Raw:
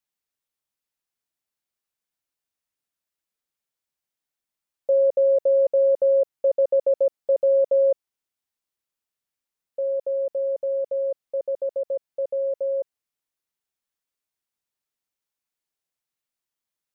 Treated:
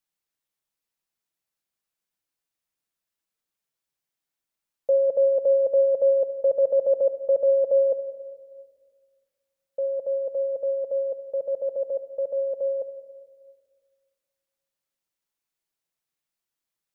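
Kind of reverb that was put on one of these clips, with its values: simulated room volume 1900 m³, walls mixed, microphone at 0.68 m

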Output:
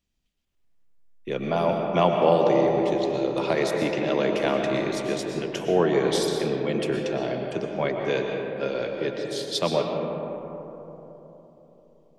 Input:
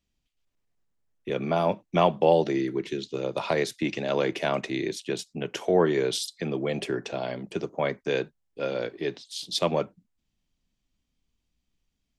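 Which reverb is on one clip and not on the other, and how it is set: algorithmic reverb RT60 3.8 s, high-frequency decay 0.3×, pre-delay 80 ms, DRR 1.5 dB

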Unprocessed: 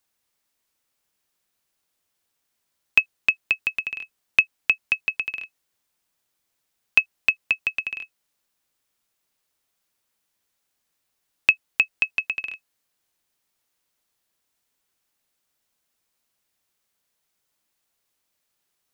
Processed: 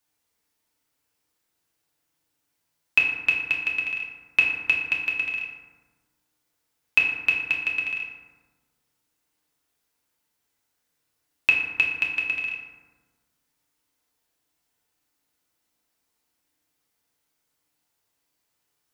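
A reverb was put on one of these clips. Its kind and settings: FDN reverb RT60 1.3 s, low-frequency decay 1.35×, high-frequency decay 0.45×, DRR -2.5 dB; trim -3.5 dB

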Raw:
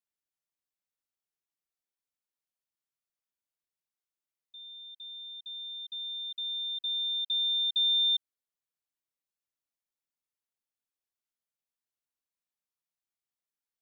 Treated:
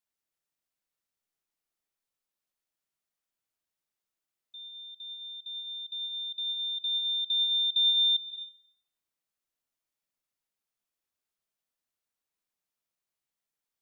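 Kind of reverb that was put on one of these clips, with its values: algorithmic reverb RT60 1.7 s, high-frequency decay 0.35×, pre-delay 95 ms, DRR 3.5 dB; trim +2.5 dB

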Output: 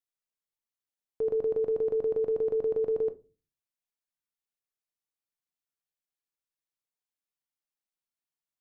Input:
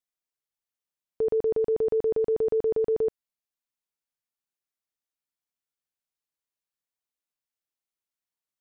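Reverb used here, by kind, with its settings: simulated room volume 130 m³, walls furnished, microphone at 0.44 m; trim -5 dB

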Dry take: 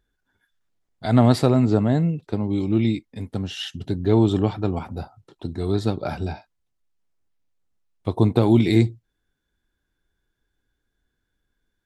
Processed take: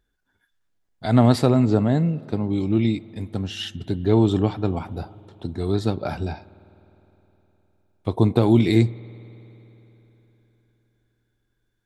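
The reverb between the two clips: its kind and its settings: spring tank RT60 3.8 s, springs 51 ms, chirp 40 ms, DRR 20 dB

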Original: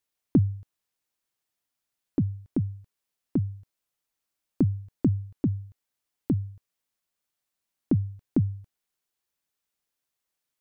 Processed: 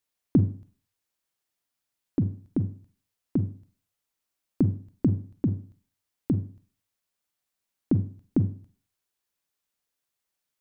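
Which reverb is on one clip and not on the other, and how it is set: Schroeder reverb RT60 0.42 s, combs from 33 ms, DRR 10.5 dB

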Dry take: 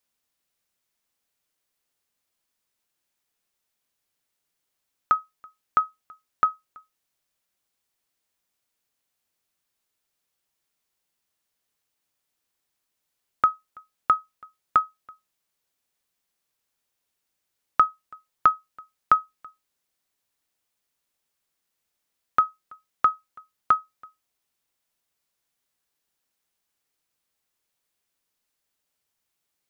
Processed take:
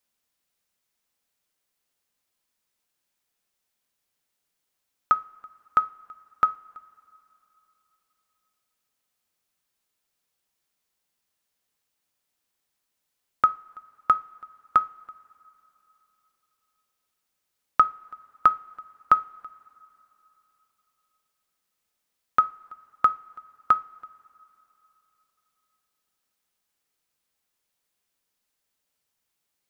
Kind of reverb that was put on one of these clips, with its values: two-slope reverb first 0.38 s, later 3.4 s, from -19 dB, DRR 14 dB

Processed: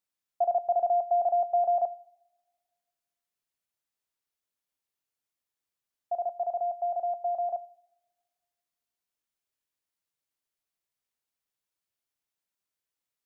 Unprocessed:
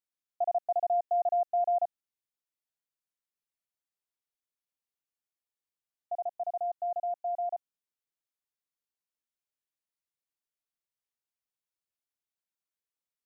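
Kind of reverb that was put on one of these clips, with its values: two-slope reverb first 0.51 s, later 1.7 s, from -21 dB, DRR 14 dB; trim +3.5 dB

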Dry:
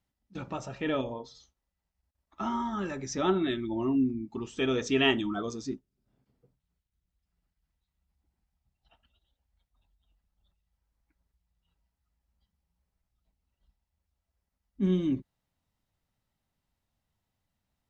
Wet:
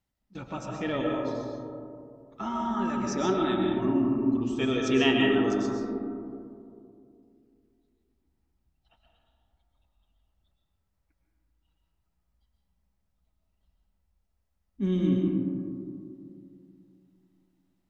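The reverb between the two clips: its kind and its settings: algorithmic reverb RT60 2.6 s, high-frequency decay 0.25×, pre-delay 85 ms, DRR -0.5 dB; trim -1 dB

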